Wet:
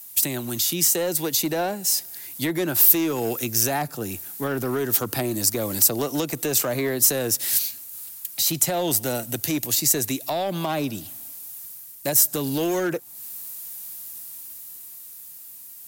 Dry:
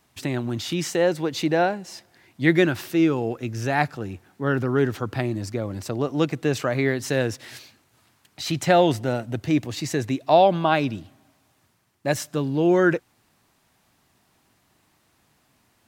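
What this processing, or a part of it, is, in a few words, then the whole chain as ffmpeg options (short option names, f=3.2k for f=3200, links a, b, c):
FM broadcast chain: -filter_complex "[0:a]highpass=75,dynaudnorm=f=170:g=21:m=11.5dB,acrossover=split=150|380|1100[a][b][c][d];[a]acompressor=threshold=-37dB:ratio=4[e];[b]acompressor=threshold=-24dB:ratio=4[f];[c]acompressor=threshold=-19dB:ratio=4[g];[d]acompressor=threshold=-38dB:ratio=4[h];[e][f][g][h]amix=inputs=4:normalize=0,aemphasis=mode=production:type=75fm,alimiter=limit=-14.5dB:level=0:latency=1:release=82,asoftclip=type=hard:threshold=-17.5dB,lowpass=f=15k:w=0.5412,lowpass=f=15k:w=1.3066,aemphasis=mode=production:type=75fm,volume=-1dB"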